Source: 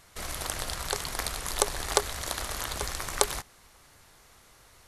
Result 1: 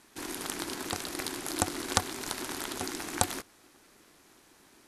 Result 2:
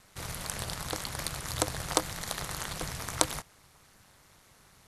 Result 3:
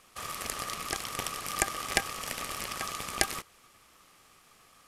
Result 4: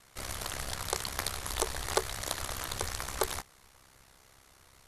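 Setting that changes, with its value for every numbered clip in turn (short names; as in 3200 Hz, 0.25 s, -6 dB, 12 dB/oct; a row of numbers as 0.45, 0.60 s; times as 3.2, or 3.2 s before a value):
ring modulator, frequency: 320, 100, 1200, 33 Hz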